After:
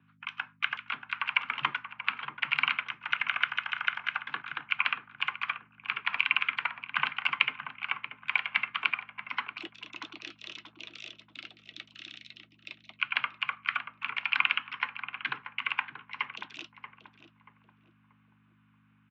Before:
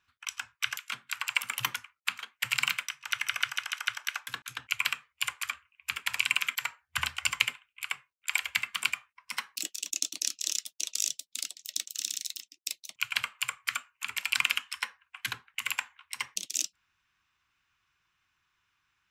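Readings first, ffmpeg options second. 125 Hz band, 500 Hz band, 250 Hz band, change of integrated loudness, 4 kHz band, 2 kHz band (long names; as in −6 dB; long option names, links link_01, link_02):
−2.5 dB, +3.5 dB, +5.0 dB, +1.0 dB, −3.0 dB, +2.0 dB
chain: -filter_complex "[0:a]acrossover=split=200 2700:gain=0.0708 1 0.141[link_01][link_02][link_03];[link_01][link_02][link_03]amix=inputs=3:normalize=0,aeval=exprs='val(0)+0.000562*(sin(2*PI*50*n/s)+sin(2*PI*2*50*n/s)/2+sin(2*PI*3*50*n/s)/3+sin(2*PI*4*50*n/s)/4+sin(2*PI*5*50*n/s)/5)':channel_layout=same,afreqshift=15,highpass=frequency=130:width=0.5412,highpass=frequency=130:width=1.3066,equalizer=frequency=140:width_type=q:width=4:gain=7,equalizer=frequency=530:width_type=q:width=4:gain=-8,equalizer=frequency=1800:width_type=q:width=4:gain=-4,lowpass=frequency=3500:width=0.5412,lowpass=frequency=3500:width=1.3066,asplit=2[link_04][link_05];[link_05]adelay=633,lowpass=frequency=1200:poles=1,volume=-7.5dB,asplit=2[link_06][link_07];[link_07]adelay=633,lowpass=frequency=1200:poles=1,volume=0.4,asplit=2[link_08][link_09];[link_09]adelay=633,lowpass=frequency=1200:poles=1,volume=0.4,asplit=2[link_10][link_11];[link_11]adelay=633,lowpass=frequency=1200:poles=1,volume=0.4,asplit=2[link_12][link_13];[link_13]adelay=633,lowpass=frequency=1200:poles=1,volume=0.4[link_14];[link_04][link_06][link_08][link_10][link_12][link_14]amix=inputs=6:normalize=0,volume=6dB"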